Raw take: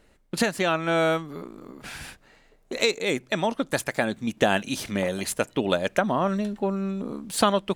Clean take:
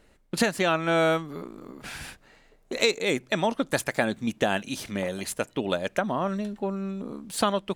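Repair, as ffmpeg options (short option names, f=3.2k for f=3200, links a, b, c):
-af "asetnsamples=n=441:p=0,asendcmd='4.37 volume volume -3.5dB',volume=0dB"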